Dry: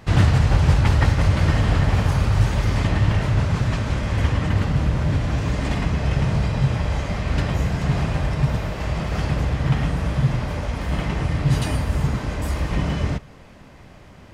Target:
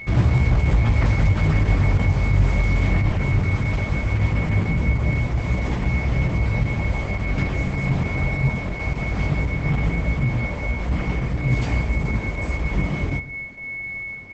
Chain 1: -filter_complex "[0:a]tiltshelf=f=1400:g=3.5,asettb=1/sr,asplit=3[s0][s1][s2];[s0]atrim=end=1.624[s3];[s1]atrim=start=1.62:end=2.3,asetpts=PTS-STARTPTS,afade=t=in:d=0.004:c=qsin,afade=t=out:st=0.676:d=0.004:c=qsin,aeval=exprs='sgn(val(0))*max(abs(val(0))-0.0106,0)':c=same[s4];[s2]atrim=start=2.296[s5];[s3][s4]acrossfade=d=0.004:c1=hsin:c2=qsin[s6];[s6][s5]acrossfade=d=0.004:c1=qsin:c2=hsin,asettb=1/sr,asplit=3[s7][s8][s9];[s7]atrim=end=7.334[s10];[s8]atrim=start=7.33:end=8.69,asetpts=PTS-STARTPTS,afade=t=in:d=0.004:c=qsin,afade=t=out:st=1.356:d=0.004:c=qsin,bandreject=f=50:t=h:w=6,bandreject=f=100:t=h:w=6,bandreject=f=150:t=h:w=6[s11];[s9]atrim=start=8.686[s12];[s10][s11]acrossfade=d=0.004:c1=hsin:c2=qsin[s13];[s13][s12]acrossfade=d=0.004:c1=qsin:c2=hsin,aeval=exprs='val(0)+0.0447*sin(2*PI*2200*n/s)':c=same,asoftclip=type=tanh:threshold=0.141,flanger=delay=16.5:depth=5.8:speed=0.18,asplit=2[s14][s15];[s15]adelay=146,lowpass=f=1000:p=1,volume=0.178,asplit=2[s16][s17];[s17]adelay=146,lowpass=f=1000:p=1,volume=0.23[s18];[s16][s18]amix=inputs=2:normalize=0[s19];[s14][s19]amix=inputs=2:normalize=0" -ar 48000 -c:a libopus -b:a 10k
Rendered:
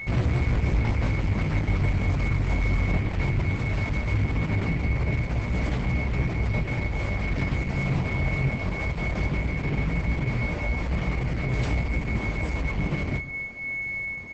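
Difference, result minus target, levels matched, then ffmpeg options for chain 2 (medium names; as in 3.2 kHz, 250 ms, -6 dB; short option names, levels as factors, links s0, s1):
saturation: distortion +12 dB
-filter_complex "[0:a]tiltshelf=f=1400:g=3.5,asettb=1/sr,asplit=3[s0][s1][s2];[s0]atrim=end=1.624[s3];[s1]atrim=start=1.62:end=2.3,asetpts=PTS-STARTPTS,afade=t=in:d=0.004:c=qsin,afade=t=out:st=0.676:d=0.004:c=qsin,aeval=exprs='sgn(val(0))*max(abs(val(0))-0.0106,0)':c=same[s4];[s2]atrim=start=2.296[s5];[s3][s4]acrossfade=d=0.004:c1=hsin:c2=qsin[s6];[s6][s5]acrossfade=d=0.004:c1=qsin:c2=hsin,asettb=1/sr,asplit=3[s7][s8][s9];[s7]atrim=end=7.334[s10];[s8]atrim=start=7.33:end=8.69,asetpts=PTS-STARTPTS,afade=t=in:d=0.004:c=qsin,afade=t=out:st=1.356:d=0.004:c=qsin,bandreject=f=50:t=h:w=6,bandreject=f=100:t=h:w=6,bandreject=f=150:t=h:w=6[s11];[s9]atrim=start=8.686[s12];[s10][s11]acrossfade=d=0.004:c1=hsin:c2=qsin[s13];[s13][s12]acrossfade=d=0.004:c1=qsin:c2=hsin,aeval=exprs='val(0)+0.0447*sin(2*PI*2200*n/s)':c=same,asoftclip=type=tanh:threshold=0.501,flanger=delay=16.5:depth=5.8:speed=0.18,asplit=2[s14][s15];[s15]adelay=146,lowpass=f=1000:p=1,volume=0.178,asplit=2[s16][s17];[s17]adelay=146,lowpass=f=1000:p=1,volume=0.23[s18];[s16][s18]amix=inputs=2:normalize=0[s19];[s14][s19]amix=inputs=2:normalize=0" -ar 48000 -c:a libopus -b:a 10k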